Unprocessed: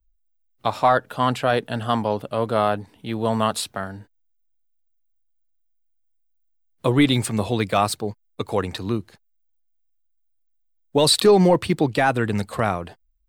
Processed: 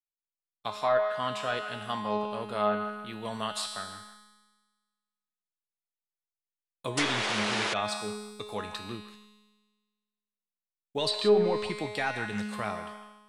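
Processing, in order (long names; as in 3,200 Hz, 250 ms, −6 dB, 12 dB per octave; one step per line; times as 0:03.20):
on a send: delay with a band-pass on its return 157 ms, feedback 37%, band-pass 1,400 Hz, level −9.5 dB
on the sum: downward expander −44 dBFS
tilt shelving filter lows −5 dB, about 1,100 Hz
tuned comb filter 210 Hz, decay 1.4 s, mix 90%
sound drawn into the spectrogram noise, 0:06.97–0:07.74, 290–11,000 Hz −32 dBFS
treble cut that deepens with the level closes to 1,900 Hz, closed at −25.5 dBFS
level +7 dB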